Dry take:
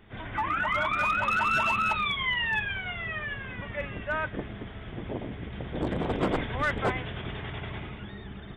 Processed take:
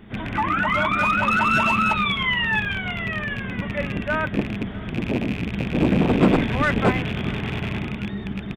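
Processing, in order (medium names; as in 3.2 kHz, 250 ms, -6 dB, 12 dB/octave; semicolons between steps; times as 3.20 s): rattle on loud lows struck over -37 dBFS, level -26 dBFS; peaking EQ 210 Hz +10 dB 1.3 oct; delay 644 ms -22 dB; trim +5.5 dB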